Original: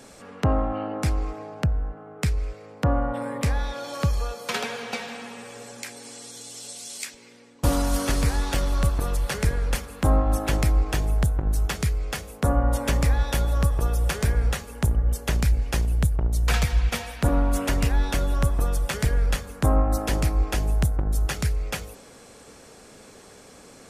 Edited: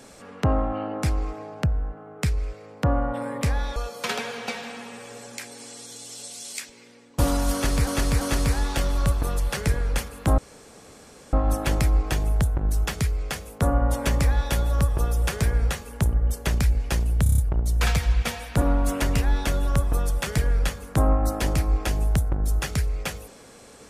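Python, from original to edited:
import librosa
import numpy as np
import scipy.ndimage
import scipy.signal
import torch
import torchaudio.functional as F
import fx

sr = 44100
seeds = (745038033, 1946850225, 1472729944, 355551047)

y = fx.edit(x, sr, fx.cut(start_s=3.76, length_s=0.45),
    fx.repeat(start_s=7.98, length_s=0.34, count=3),
    fx.insert_room_tone(at_s=10.15, length_s=0.95),
    fx.stutter(start_s=16.05, slice_s=0.03, count=6), tone=tone)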